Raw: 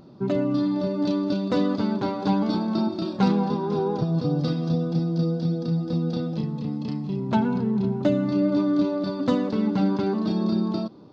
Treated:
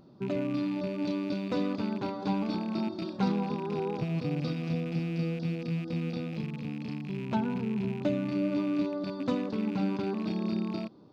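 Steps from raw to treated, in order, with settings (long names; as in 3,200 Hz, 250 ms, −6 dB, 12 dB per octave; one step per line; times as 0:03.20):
loose part that buzzes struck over −29 dBFS, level −29 dBFS
level −7.5 dB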